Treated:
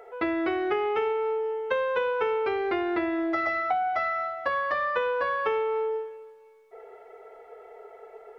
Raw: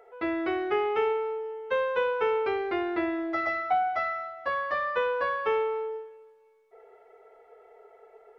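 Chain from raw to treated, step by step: compressor, threshold -31 dBFS, peak gain reduction 9.5 dB; gain +7 dB

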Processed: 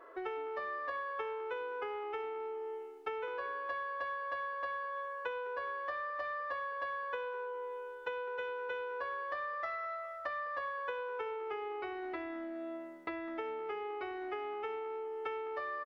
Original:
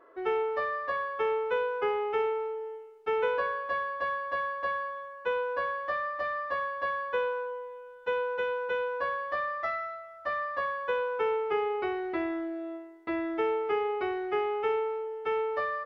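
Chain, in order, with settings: compressor 12:1, threshold -39 dBFS, peak gain reduction 15.5 dB; bell 170 Hz -9 dB 1.9 oct; on a send: frequency-shifting echo 0.204 s, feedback 30%, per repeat -74 Hz, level -20 dB; on the sum: gain +4 dB

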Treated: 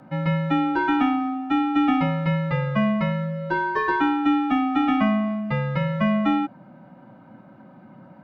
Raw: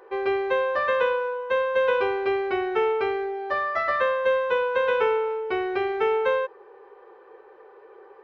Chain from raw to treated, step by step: frequency shift -230 Hz; gain +2 dB

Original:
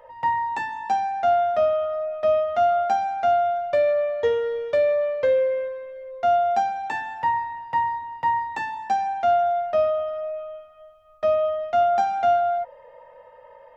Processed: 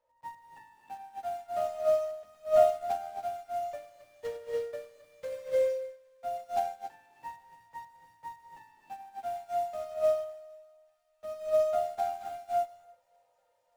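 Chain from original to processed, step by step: block floating point 3-bit; high shelf 3100 Hz -11.5 dB; de-hum 45.09 Hz, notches 36; on a send: thinning echo 0.578 s, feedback 83%, high-pass 1200 Hz, level -17 dB; on the sum: non-linear reverb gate 0.33 s rising, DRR 1 dB; upward expander 2.5:1, over -27 dBFS; gain -5.5 dB

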